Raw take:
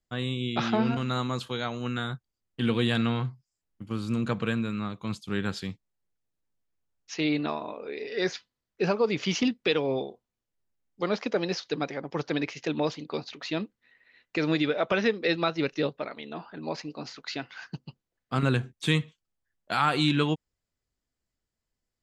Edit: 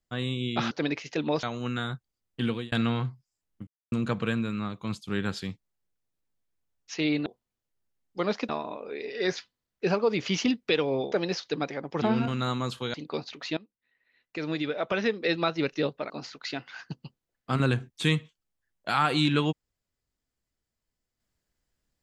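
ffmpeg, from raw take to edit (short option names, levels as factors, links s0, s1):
-filter_complex "[0:a]asplit=13[s0][s1][s2][s3][s4][s5][s6][s7][s8][s9][s10][s11][s12];[s0]atrim=end=0.712[s13];[s1]atrim=start=12.218:end=12.942[s14];[s2]atrim=start=1.628:end=2.92,asetpts=PTS-STARTPTS,afade=t=out:st=0.972:d=0.32[s15];[s3]atrim=start=2.92:end=3.87,asetpts=PTS-STARTPTS,afade=t=in:d=0.004:c=hsin,afade=t=out:st=0.946:d=0.004:c=hsin[s16];[s4]atrim=start=3.87:end=4.12,asetpts=PTS-STARTPTS,volume=0[s17];[s5]atrim=start=4.12:end=7.462,asetpts=PTS-STARTPTS,afade=t=in:d=0.004:c=hsin[s18];[s6]atrim=start=10.088:end=11.322[s19];[s7]atrim=start=7.458:end=10.092[s20];[s8]atrim=start=11.318:end=12.222[s21];[s9]atrim=start=0.708:end=1.632[s22];[s10]atrim=start=12.938:end=13.57,asetpts=PTS-STARTPTS,afade=t=out:st=0.628:d=0.004:c=hsin:silence=0.0841395[s23];[s11]atrim=start=13.57:end=16.102,asetpts=PTS-STARTPTS,afade=t=in:d=1.89:silence=0.0841395[s24];[s12]atrim=start=16.928[s25];[s13][s14]acrossfade=d=0.004:c1=hsin:c2=hsin[s26];[s15][s16][s17][s18]concat=n=4:v=0:a=1[s27];[s26][s27]acrossfade=d=0.004:c1=hsin:c2=hsin[s28];[s28][s19]acrossfade=d=0.004:c1=hsin:c2=hsin[s29];[s29][s20]acrossfade=d=0.004:c1=hsin:c2=hsin[s30];[s30][s21]acrossfade=d=0.004:c1=hsin:c2=hsin[s31];[s31][s22]acrossfade=d=0.004:c1=hsin:c2=hsin[s32];[s23][s24]concat=n=2:v=0:a=1[s33];[s32][s33]acrossfade=d=0.004:c1=hsin:c2=hsin[s34];[s34][s25]acrossfade=d=0.004:c1=hsin:c2=hsin"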